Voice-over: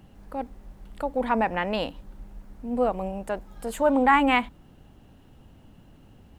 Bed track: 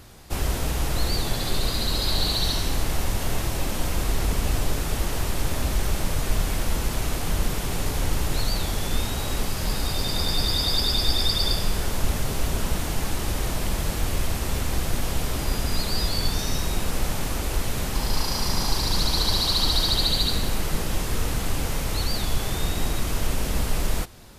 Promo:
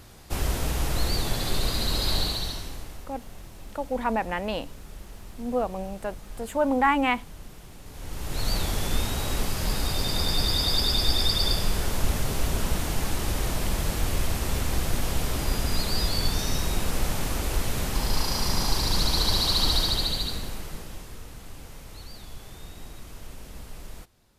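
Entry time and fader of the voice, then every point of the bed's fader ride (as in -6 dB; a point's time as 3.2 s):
2.75 s, -2.5 dB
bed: 2.16 s -1.5 dB
3.09 s -19.5 dB
7.83 s -19.5 dB
8.51 s -1 dB
19.73 s -1 dB
21.24 s -17 dB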